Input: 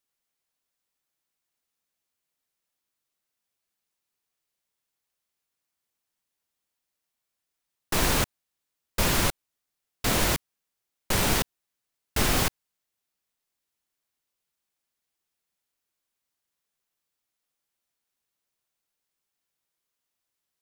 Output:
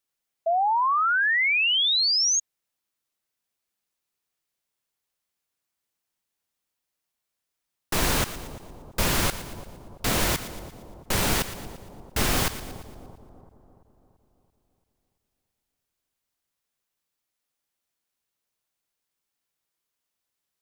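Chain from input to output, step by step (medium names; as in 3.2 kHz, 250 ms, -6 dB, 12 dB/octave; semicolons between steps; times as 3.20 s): two-band feedback delay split 940 Hz, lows 337 ms, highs 116 ms, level -13 dB; painted sound rise, 0.46–2.40 s, 650–6700 Hz -22 dBFS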